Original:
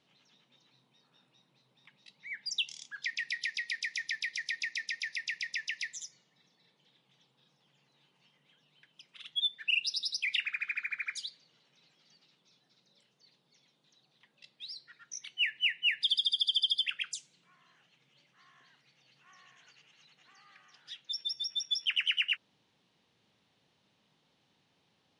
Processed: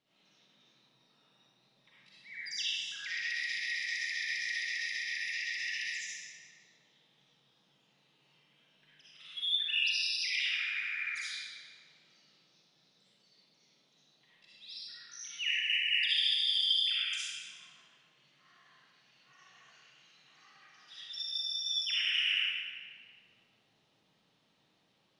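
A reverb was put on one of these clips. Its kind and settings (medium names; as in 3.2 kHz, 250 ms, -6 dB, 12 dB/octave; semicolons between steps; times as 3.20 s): algorithmic reverb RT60 1.6 s, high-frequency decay 0.9×, pre-delay 20 ms, DRR -10 dB; trim -9.5 dB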